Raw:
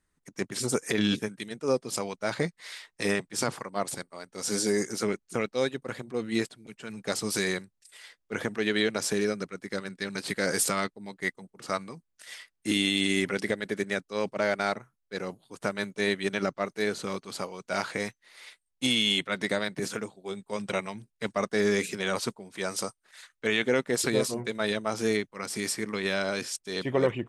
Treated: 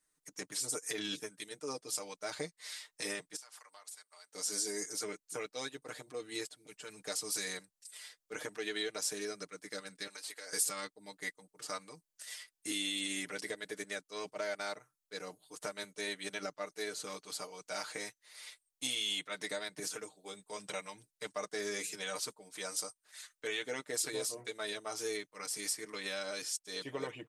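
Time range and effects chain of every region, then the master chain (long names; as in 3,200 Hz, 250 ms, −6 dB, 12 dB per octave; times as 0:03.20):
0:03.36–0:04.33: high-pass filter 1,000 Hz + downward compressor 5 to 1, threshold −49 dBFS
0:10.07–0:10.53: high-pass filter 470 Hz + downward compressor, threshold −38 dBFS
whole clip: bass and treble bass −11 dB, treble +10 dB; comb filter 6.6 ms, depth 83%; downward compressor 1.5 to 1, threshold −38 dBFS; level −7.5 dB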